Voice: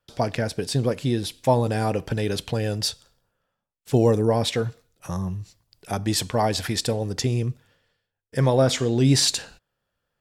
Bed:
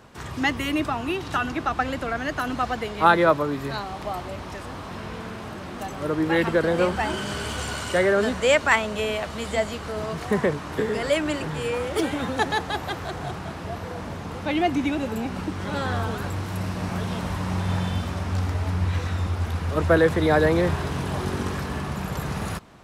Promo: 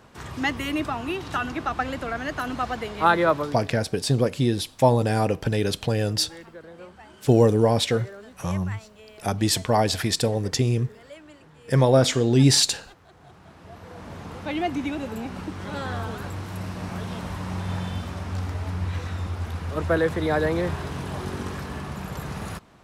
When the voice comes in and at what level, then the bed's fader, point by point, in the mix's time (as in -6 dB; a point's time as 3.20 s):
3.35 s, +1.5 dB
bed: 3.41 s -2 dB
3.78 s -22 dB
13.06 s -22 dB
14.20 s -4 dB